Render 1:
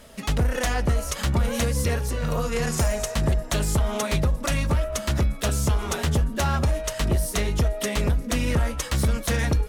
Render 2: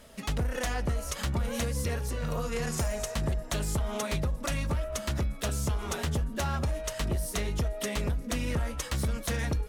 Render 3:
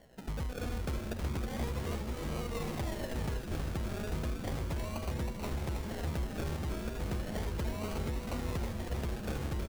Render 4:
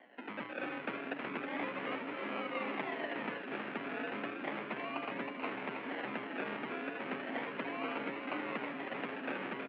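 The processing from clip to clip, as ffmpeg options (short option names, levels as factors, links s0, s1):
-af "acompressor=threshold=0.0708:ratio=2,volume=0.562"
-filter_complex "[0:a]acrusher=samples=35:mix=1:aa=0.000001:lfo=1:lforange=21:lforate=0.34,asplit=2[s0][s1];[s1]asplit=8[s2][s3][s4][s5][s6][s7][s8][s9];[s2]adelay=319,afreqshift=-140,volume=0.596[s10];[s3]adelay=638,afreqshift=-280,volume=0.347[s11];[s4]adelay=957,afreqshift=-420,volume=0.2[s12];[s5]adelay=1276,afreqshift=-560,volume=0.116[s13];[s6]adelay=1595,afreqshift=-700,volume=0.0676[s14];[s7]adelay=1914,afreqshift=-840,volume=0.0389[s15];[s8]adelay=2233,afreqshift=-980,volume=0.0226[s16];[s9]adelay=2552,afreqshift=-1120,volume=0.0132[s17];[s10][s11][s12][s13][s14][s15][s16][s17]amix=inputs=8:normalize=0[s18];[s0][s18]amix=inputs=2:normalize=0,volume=0.447"
-af "equalizer=f=370:w=0.33:g=-13,highpass=f=200:t=q:w=0.5412,highpass=f=200:t=q:w=1.307,lowpass=f=2600:t=q:w=0.5176,lowpass=f=2600:t=q:w=0.7071,lowpass=f=2600:t=q:w=1.932,afreqshift=55,volume=3.76"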